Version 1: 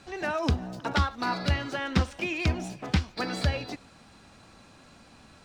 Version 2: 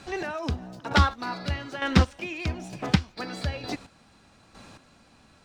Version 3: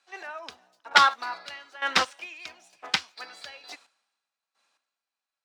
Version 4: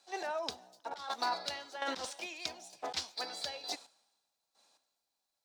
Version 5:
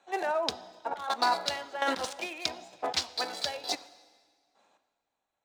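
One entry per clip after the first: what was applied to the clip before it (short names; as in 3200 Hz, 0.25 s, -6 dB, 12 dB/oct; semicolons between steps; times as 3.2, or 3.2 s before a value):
chopper 1.1 Hz, depth 65%, duty 25%; gain +5.5 dB
HPF 840 Hz 12 dB/oct; three-band expander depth 100%; gain -2 dB
band shelf 1800 Hz -10 dB; negative-ratio compressor -37 dBFS, ratio -1
Wiener smoothing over 9 samples; plate-style reverb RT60 1.8 s, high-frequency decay 0.9×, DRR 17.5 dB; gain +8 dB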